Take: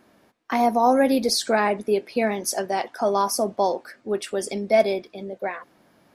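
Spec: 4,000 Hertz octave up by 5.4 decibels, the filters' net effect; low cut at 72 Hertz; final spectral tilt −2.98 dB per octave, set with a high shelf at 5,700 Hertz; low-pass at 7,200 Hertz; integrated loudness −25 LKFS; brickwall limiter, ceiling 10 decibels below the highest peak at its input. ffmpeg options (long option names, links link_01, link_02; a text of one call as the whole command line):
ffmpeg -i in.wav -af "highpass=72,lowpass=7200,equalizer=frequency=4000:width_type=o:gain=4.5,highshelf=frequency=5700:gain=6.5,volume=0.5dB,alimiter=limit=-14dB:level=0:latency=1" out.wav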